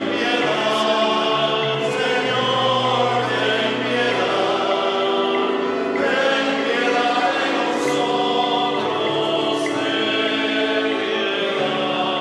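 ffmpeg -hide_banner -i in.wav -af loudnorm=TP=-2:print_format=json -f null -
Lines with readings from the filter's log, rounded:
"input_i" : "-19.3",
"input_tp" : "-5.5",
"input_lra" : "1.1",
"input_thresh" : "-29.3",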